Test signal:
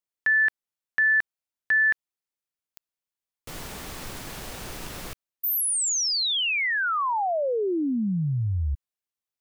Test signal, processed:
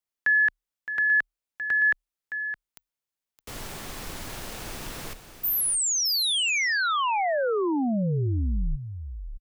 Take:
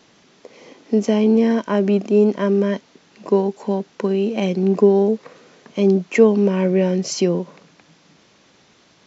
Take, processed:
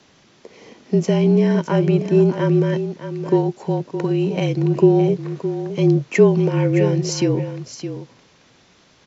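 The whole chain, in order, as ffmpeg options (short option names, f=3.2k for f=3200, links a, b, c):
-af "afreqshift=-38,aecho=1:1:616:0.299"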